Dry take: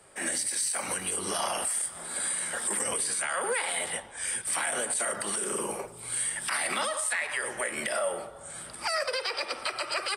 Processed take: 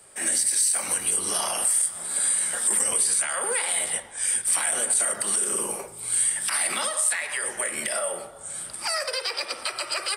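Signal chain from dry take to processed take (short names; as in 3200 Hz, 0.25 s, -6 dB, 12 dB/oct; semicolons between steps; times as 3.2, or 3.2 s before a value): high shelf 5200 Hz +10.5 dB; de-hum 62.69 Hz, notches 37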